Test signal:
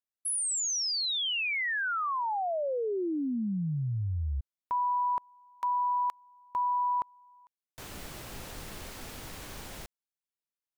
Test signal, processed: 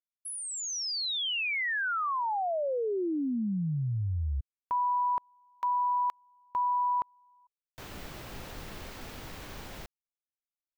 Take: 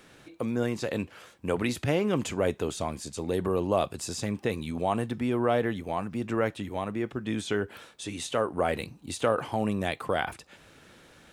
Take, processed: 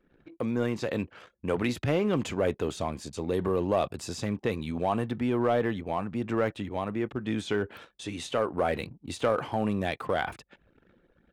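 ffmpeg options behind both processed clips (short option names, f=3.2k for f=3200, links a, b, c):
-filter_complex "[0:a]anlmdn=0.00631,equalizer=f=9.8k:w=0.69:g=-8,asplit=2[a][b];[b]asoftclip=type=hard:threshold=-22dB,volume=-3dB[c];[a][c]amix=inputs=2:normalize=0,volume=-4dB"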